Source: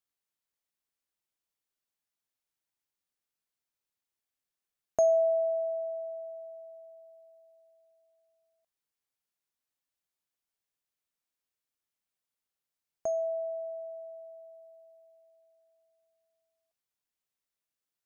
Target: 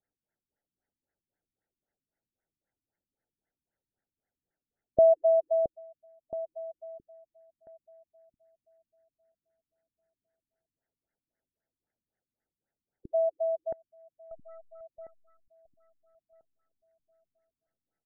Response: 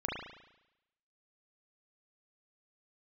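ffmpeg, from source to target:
-filter_complex "[0:a]asplit=2[a][b];[b]acompressor=threshold=-37dB:ratio=10,volume=-1.5dB[c];[a][c]amix=inputs=2:normalize=0,asuperstop=centerf=1100:order=4:qfactor=2.1,asettb=1/sr,asplit=3[d][e][f];[d]atrim=end=14.314[g];[e]atrim=start=14.31:end=14.81,asetpts=PTS-STARTPTS,afade=t=in:d=0.004:c=qsin,afade=t=out:st=0.496:d=0.004:c=qsin,aeval=exprs='(tanh(251*val(0)+0.7)-tanh(0.7))/251':c=same[h];[f]atrim=start=14.806[i];[g][h]acrossfade=d=0.004:c1=hsin:c2=qsin[j];[j][i]acrossfade=d=0.004:c1=qsin:c2=hsin,aecho=1:1:671|1342|2013|2684|3355:0.422|0.169|0.0675|0.027|0.0108,afftfilt=real='re*lt(b*sr/1024,300*pow(2200/300,0.5+0.5*sin(2*PI*3.8*pts/sr)))':imag='im*lt(b*sr/1024,300*pow(2200/300,0.5+0.5*sin(2*PI*3.8*pts/sr)))':win_size=1024:overlap=0.75,volume=3.5dB"

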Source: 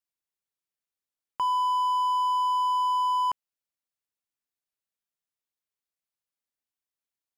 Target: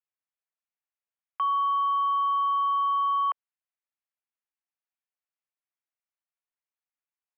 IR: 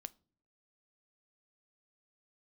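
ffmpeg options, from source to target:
-af "aeval=exprs='0.106*(cos(1*acos(clip(val(0)/0.106,-1,1)))-cos(1*PI/2))+0.00335*(cos(7*acos(clip(val(0)/0.106,-1,1)))-cos(7*PI/2))+0.00211*(cos(8*acos(clip(val(0)/0.106,-1,1)))-cos(8*PI/2))':c=same,highpass=f=480:t=q:w=0.5412,highpass=f=480:t=q:w=1.307,lowpass=f=2.7k:t=q:w=0.5176,lowpass=f=2.7k:t=q:w=0.7071,lowpass=f=2.7k:t=q:w=1.932,afreqshift=120"

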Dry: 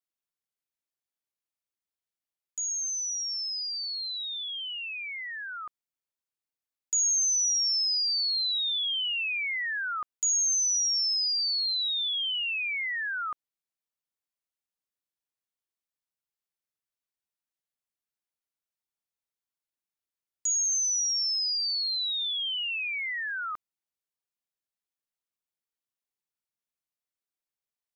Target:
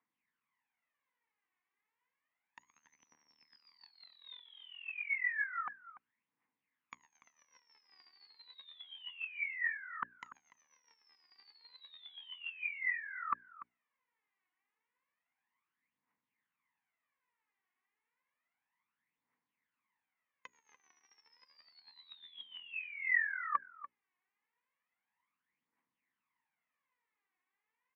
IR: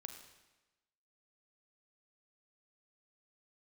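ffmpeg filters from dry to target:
-filter_complex "[0:a]bandreject=f=60:t=h:w=6,bandreject=f=120:t=h:w=6,bandreject=f=180:t=h:w=6,bandreject=f=240:t=h:w=6,bandreject=f=300:t=h:w=6,bandreject=f=360:t=h:w=6,bandreject=f=420:t=h:w=6,afftfilt=real='re*lt(hypot(re,im),0.126)':imag='im*lt(hypot(re,im),0.126)':win_size=1024:overlap=0.75,equalizer=f=710:t=o:w=1.5:g=-4,bandreject=f=560:w=17,acontrast=53,aphaser=in_gain=1:out_gain=1:delay=2.8:decay=0.67:speed=0.31:type=triangular,highpass=230,equalizer=f=250:t=q:w=4:g=4,equalizer=f=380:t=q:w=4:g=-10,equalizer=f=620:t=q:w=4:g=-9,equalizer=f=990:t=q:w=4:g=8,equalizer=f=1.4k:t=q:w=4:g=-5,equalizer=f=2k:t=q:w=4:g=6,lowpass=f=2.2k:w=0.5412,lowpass=f=2.2k:w=1.3066,asplit=2[a][b];[b]adelay=291.5,volume=-15dB,highshelf=f=4k:g=-6.56[c];[a][c]amix=inputs=2:normalize=0,volume=5dB"

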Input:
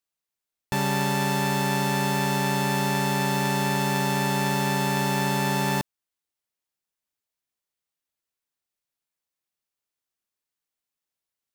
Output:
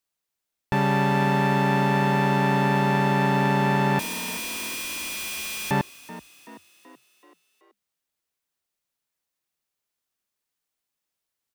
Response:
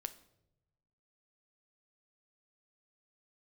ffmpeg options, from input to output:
-filter_complex "[0:a]acrossover=split=3000[a][b];[b]acompressor=threshold=-47dB:ratio=4:attack=1:release=60[c];[a][c]amix=inputs=2:normalize=0,asettb=1/sr,asplit=3[d][e][f];[d]atrim=end=3.994[g];[e]atrim=start=3.99:end=5.71,asetpts=PTS-STARTPTS,afade=t=in:d=0.004:c=qsin,afade=t=out:st=1.716:d=0.004:c=qsin,aeval=exprs='(mod(35.5*val(0)+1,2)-1)/35.5':c=same[h];[f]atrim=start=5.706[i];[g][h]acrossfade=d=0.004:c1=hsin:c2=qsin[j];[j][i]acrossfade=d=0.004:c1=qsin:c2=hsin,asplit=6[k][l][m][n][o][p];[l]adelay=380,afreqshift=40,volume=-16.5dB[q];[m]adelay=760,afreqshift=80,volume=-21.9dB[r];[n]adelay=1140,afreqshift=120,volume=-27.2dB[s];[o]adelay=1520,afreqshift=160,volume=-32.6dB[t];[p]adelay=1900,afreqshift=200,volume=-37.9dB[u];[k][q][r][s][t][u]amix=inputs=6:normalize=0,volume=3.5dB"

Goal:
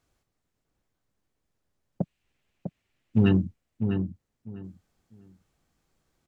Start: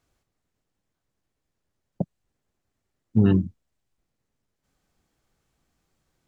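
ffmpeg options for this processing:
-filter_complex "[0:a]asplit=3[a][b][c];[a]afade=t=out:st=2.03:d=0.02[d];[b]equalizer=f=2.6k:w=1.2:g=14,afade=t=in:st=2.03:d=0.02,afade=t=out:st=3.28:d=0.02[e];[c]afade=t=in:st=3.28:d=0.02[f];[d][e][f]amix=inputs=3:normalize=0,asplit=2[g][h];[h]asoftclip=type=tanh:threshold=-18.5dB,volume=-7dB[i];[g][i]amix=inputs=2:normalize=0,asplit=2[j][k];[k]adelay=650,lowpass=f=1.8k:p=1,volume=-6.5dB,asplit=2[l][m];[m]adelay=650,lowpass=f=1.8k:p=1,volume=0.21,asplit=2[n][o];[o]adelay=650,lowpass=f=1.8k:p=1,volume=0.21[p];[j][l][n][p]amix=inputs=4:normalize=0,volume=-4dB"

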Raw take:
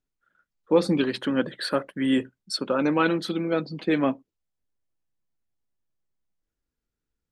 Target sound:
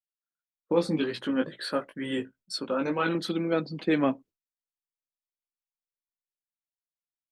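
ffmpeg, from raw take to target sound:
-filter_complex "[0:a]agate=range=-33dB:threshold=-45dB:ratio=3:detection=peak,asettb=1/sr,asplit=3[a][b][c];[a]atrim=end=0.724[d];[b]atrim=start=0.72:end=3.15,asetpts=PTS-STARTPTS,afade=t=in:d=0.004:c=qsin,afade=t=out:st=2.426:d=0.004:c=qsin,flanger=delay=17:depth=2.2:speed=2.2[e];[c]atrim=start=3.146[f];[d][e]acrossfade=d=0.004:c1=hsin:c2=qsin[g];[g][f]acrossfade=d=0.004:c1=qsin:c2=hsin,volume=-1.5dB"

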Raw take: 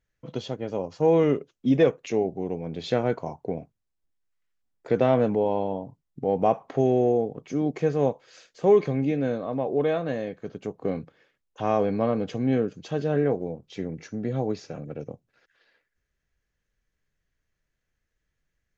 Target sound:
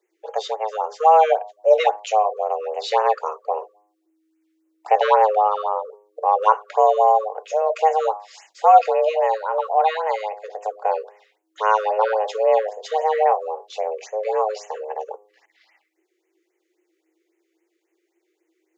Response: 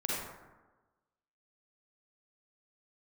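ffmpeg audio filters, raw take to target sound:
-af "afreqshift=320,bandreject=f=103.8:t=h:w=4,bandreject=f=207.6:t=h:w=4,bandreject=f=311.4:t=h:w=4,bandreject=f=415.2:t=h:w=4,bandreject=f=519:t=h:w=4,bandreject=f=622.8:t=h:w=4,bandreject=f=726.6:t=h:w=4,bandreject=f=830.4:t=h:w=4,bandreject=f=934.2:t=h:w=4,bandreject=f=1.038k:t=h:w=4,bandreject=f=1.1418k:t=h:w=4,afftfilt=real='re*(1-between(b*sr/1024,760*pow(4500/760,0.5+0.5*sin(2*PI*3.7*pts/sr))/1.41,760*pow(4500/760,0.5+0.5*sin(2*PI*3.7*pts/sr))*1.41))':imag='im*(1-between(b*sr/1024,760*pow(4500/760,0.5+0.5*sin(2*PI*3.7*pts/sr))/1.41,760*pow(4500/760,0.5+0.5*sin(2*PI*3.7*pts/sr))*1.41))':win_size=1024:overlap=0.75,volume=7dB"

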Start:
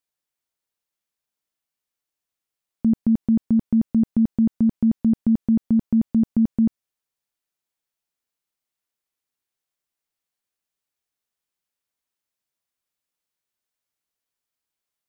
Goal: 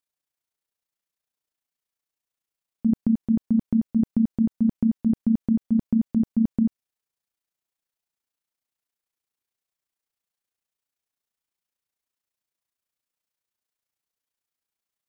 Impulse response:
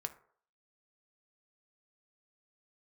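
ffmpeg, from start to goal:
-af "tremolo=f=29:d=0.621"

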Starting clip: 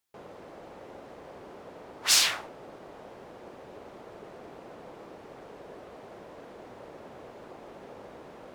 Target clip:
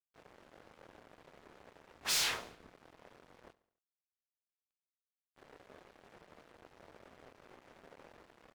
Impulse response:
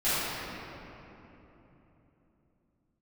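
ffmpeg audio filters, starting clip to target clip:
-filter_complex "[0:a]asettb=1/sr,asplit=3[a][b][c];[a]atrim=end=3.534[d];[b]atrim=start=3.53:end=5.36,asetpts=PTS-STARTPTS,afade=t=in:d=0.004:c=qsin,afade=t=out:st=1.826:d=0.004:c=qsin,bandpass=f=730:t=q:w=7.3:csg=0[e];[c]atrim=start=5.356[f];[d][e]acrossfade=d=0.004:c1=hsin:c2=qsin[g];[g][f]acrossfade=d=0.004:c1=qsin:c2=hsin,flanger=delay=22.5:depth=5.9:speed=0.29,aeval=exprs='sgn(val(0))*max(abs(val(0))-0.00398,0)':c=same,asettb=1/sr,asplit=3[h][i][j];[h]atrim=end=1.974[k];[i]atrim=start=1.97:end=2.73,asetpts=PTS-STARTPTS,afade=t=in:d=0.004:c=qsin,afade=t=out:st=0.756:d=0.004:c=qsin,afreqshift=-180[l];[j]atrim=start=2.726[m];[k][l]acrossfade=d=0.004:c1=hsin:c2=qsin[n];[n][m]acrossfade=d=0.004:c1=qsin:c2=hsin,asoftclip=type=tanh:threshold=-28.5dB,aecho=1:1:70|140|210|280:0.106|0.0561|0.0298|0.0158"

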